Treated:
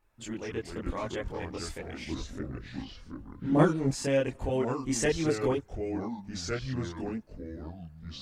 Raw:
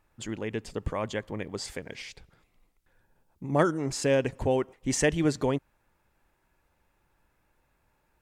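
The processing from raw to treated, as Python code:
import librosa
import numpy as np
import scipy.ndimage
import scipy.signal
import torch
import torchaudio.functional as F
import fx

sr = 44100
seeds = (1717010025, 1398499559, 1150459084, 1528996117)

y = fx.echo_pitch(x, sr, ms=150, semitones=-4, count=3, db_per_echo=-6.0)
y = fx.chorus_voices(y, sr, voices=4, hz=0.43, base_ms=24, depth_ms=2.4, mix_pct=55)
y = fx.low_shelf(y, sr, hz=460.0, db=9.0, at=(2.06, 3.91))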